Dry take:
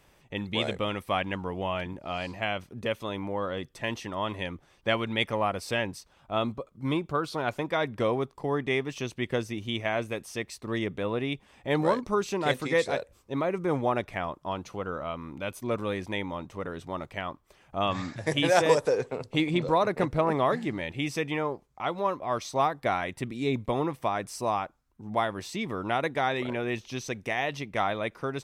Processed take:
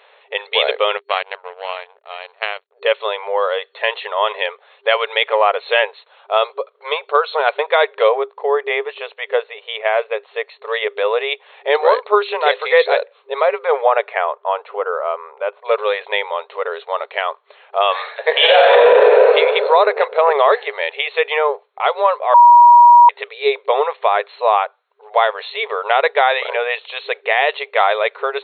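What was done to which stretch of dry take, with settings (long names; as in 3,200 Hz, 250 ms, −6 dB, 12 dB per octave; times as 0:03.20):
0:00.97–0:02.82: power curve on the samples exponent 2
0:08.09–0:10.65: head-to-tape spacing loss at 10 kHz 21 dB
0:13.71–0:15.64: low-pass filter 3,200 Hz → 1,200 Hz
0:18.31–0:19.27: thrown reverb, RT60 1.9 s, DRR −8 dB
0:22.34–0:23.09: beep over 958 Hz −17.5 dBFS
whole clip: brick-wall band-pass 400–4,300 Hz; boost into a limiter +15.5 dB; level −1 dB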